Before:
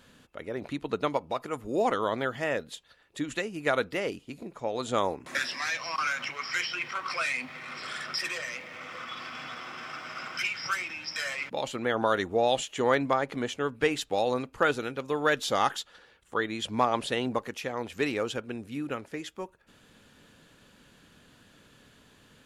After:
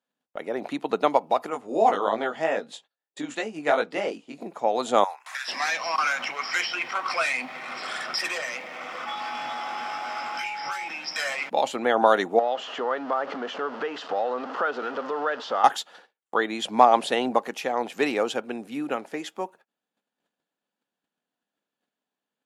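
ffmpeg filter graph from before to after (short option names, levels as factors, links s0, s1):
-filter_complex "[0:a]asettb=1/sr,asplit=3[s0][s1][s2];[s0]atrim=end=1.504[s3];[s1]atrim=start=1.5:end=4.41,asetpts=PTS-STARTPTS,afade=t=in:d=0.004:c=qsin,afade=t=out:st=2.906:d=0.004:c=qsin,lowpass=f=9100:w=0.5412,lowpass=f=9100:w=1.3066,flanger=delay=18:depth=3.1:speed=3[s4];[s2]atrim=start=4.406[s5];[s3][s4]acrossfade=d=0.004:c1=hsin:c2=qsin[s6];[s6][s5]acrossfade=d=0.004:c1=qsin:c2=hsin,asettb=1/sr,asplit=3[s7][s8][s9];[s7]atrim=end=5.044[s10];[s8]atrim=start=5.04:end=5.48,asetpts=PTS-STARTPTS,afade=t=in:d=0.004:c=qsin,afade=t=out:st=0.436:d=0.004:c=qsin,highpass=f=1000:w=0.5412,highpass=f=1000:w=1.3066,acompressor=threshold=0.0178:ratio=3:attack=3.2:release=140:knee=1:detection=peak[s11];[s9]atrim=start=5.476[s12];[s10][s11]acrossfade=d=0.004:c1=hsin:c2=qsin[s13];[s13][s12]acrossfade=d=0.004:c1=qsin:c2=hsin,asettb=1/sr,asplit=3[s14][s15][s16];[s14]atrim=end=9.064[s17];[s15]atrim=start=9.06:end=10.88,asetpts=PTS-STARTPTS,afade=t=in:d=0.004:c=qsin,afade=t=out:st=1.816:d=0.004:c=qsin,asplit=2[s18][s19];[s19]adelay=21,volume=0.794[s20];[s18][s20]amix=inputs=2:normalize=0,atrim=end_sample=80262,acrossover=split=2300|5100[s21][s22][s23];[s21]acompressor=threshold=0.0112:ratio=4[s24];[s22]acompressor=threshold=0.00562:ratio=4[s25];[s23]acompressor=threshold=0.00224:ratio=4[s26];[s24][s25][s26]amix=inputs=3:normalize=0,aeval=exprs='val(0)+0.00631*sin(2*PI*840*n/s)':c=same[s27];[s16]atrim=start=10.876[s28];[s17][s27]acrossfade=d=0.004:c1=hsin:c2=qsin[s29];[s29][s28]acrossfade=d=0.004:c1=qsin:c2=hsin,asettb=1/sr,asplit=3[s30][s31][s32];[s30]atrim=end=12.394[s33];[s31]atrim=start=12.39:end=15.64,asetpts=PTS-STARTPTS,afade=t=in:d=0.004:c=qsin,afade=t=out:st=3.246:d=0.004:c=qsin,aeval=exprs='val(0)+0.5*0.0266*sgn(val(0))':c=same,acompressor=threshold=0.0316:ratio=3:attack=3.2:release=140:knee=1:detection=peak,highpass=300,equalizer=f=320:t=q:w=4:g=-5,equalizer=f=780:t=q:w=4:g=-5,equalizer=f=1300:t=q:w=4:g=6,equalizer=f=2300:t=q:w=4:g=-10,equalizer=f=3800:t=q:w=4:g=-9,lowpass=f=4100:w=0.5412,lowpass=f=4100:w=1.3066[s34];[s32]atrim=start=15.636[s35];[s33][s34]acrossfade=d=0.004:c1=hsin:c2=qsin[s36];[s36][s35]acrossfade=d=0.004:c1=qsin:c2=hsin,highpass=f=190:w=0.5412,highpass=f=190:w=1.3066,equalizer=f=760:w=2.3:g=10,agate=range=0.02:threshold=0.00251:ratio=16:detection=peak,volume=1.5"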